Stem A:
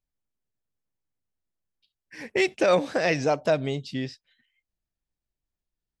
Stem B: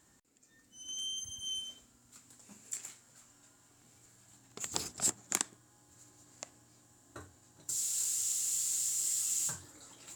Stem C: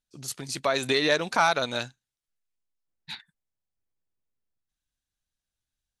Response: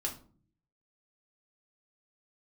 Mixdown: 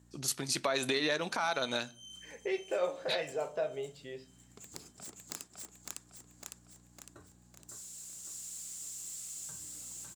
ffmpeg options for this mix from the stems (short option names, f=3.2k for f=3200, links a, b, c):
-filter_complex "[0:a]lowpass=3.9k,lowshelf=f=350:t=q:w=3:g=-6.5,adelay=100,volume=-14dB,asplit=2[a][b];[b]volume=-5dB[c];[1:a]aeval=exprs='val(0)+0.00158*(sin(2*PI*60*n/s)+sin(2*PI*2*60*n/s)/2+sin(2*PI*3*60*n/s)/3+sin(2*PI*4*60*n/s)/4+sin(2*PI*5*60*n/s)/5)':c=same,aeval=exprs='0.316*(cos(1*acos(clip(val(0)/0.316,-1,1)))-cos(1*PI/2))+0.0282*(cos(3*acos(clip(val(0)/0.316,-1,1)))-cos(3*PI/2))+0.0631*(cos(7*acos(clip(val(0)/0.316,-1,1)))-cos(7*PI/2))':c=same,volume=-3dB,asplit=2[d][e];[e]volume=-5dB[f];[2:a]acompressor=threshold=-24dB:ratio=4,volume=1.5dB,asplit=3[g][h][i];[h]volume=-14.5dB[j];[i]apad=whole_len=447703[k];[d][k]sidechaincompress=threshold=-41dB:ratio=8:attack=16:release=266[l];[a][l]amix=inputs=2:normalize=0,lowshelf=f=420:g=8.5,acompressor=threshold=-55dB:ratio=1.5,volume=0dB[m];[3:a]atrim=start_sample=2205[n];[c][j]amix=inputs=2:normalize=0[o];[o][n]afir=irnorm=-1:irlink=0[p];[f]aecho=0:1:556|1112|1668|2224|2780|3336|3892:1|0.5|0.25|0.125|0.0625|0.0312|0.0156[q];[g][m][p][q]amix=inputs=4:normalize=0,highpass=f=150:p=1,alimiter=limit=-19.5dB:level=0:latency=1:release=397"